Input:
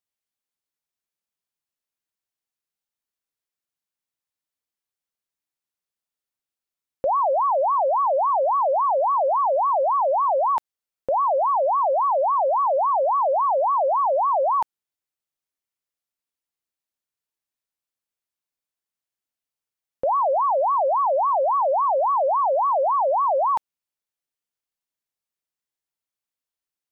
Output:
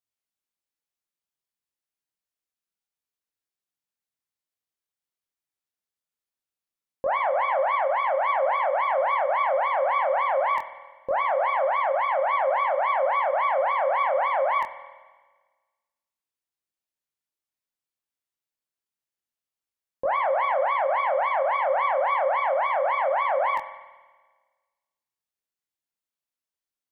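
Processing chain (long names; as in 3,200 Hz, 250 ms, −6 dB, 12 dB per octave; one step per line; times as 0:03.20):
phase distortion by the signal itself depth 0.094 ms
spring reverb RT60 1.4 s, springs 49 ms, chirp 45 ms, DRR 12 dB
chorus effect 0.25 Hz, delay 20 ms, depth 4.7 ms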